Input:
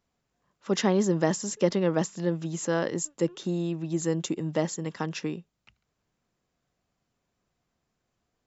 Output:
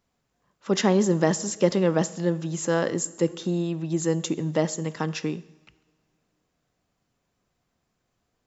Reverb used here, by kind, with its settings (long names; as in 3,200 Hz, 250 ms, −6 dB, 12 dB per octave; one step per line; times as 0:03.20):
coupled-rooms reverb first 0.88 s, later 2.7 s, from −19 dB, DRR 15.5 dB
level +3 dB